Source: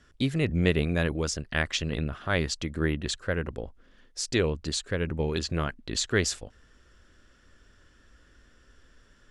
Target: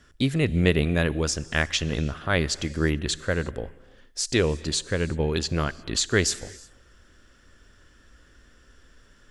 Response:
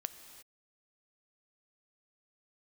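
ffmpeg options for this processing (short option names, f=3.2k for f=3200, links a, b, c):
-filter_complex "[0:a]asplit=2[a][b];[1:a]atrim=start_sample=2205,highshelf=f=6.9k:g=11[c];[b][c]afir=irnorm=-1:irlink=0,volume=-5dB[d];[a][d]amix=inputs=2:normalize=0"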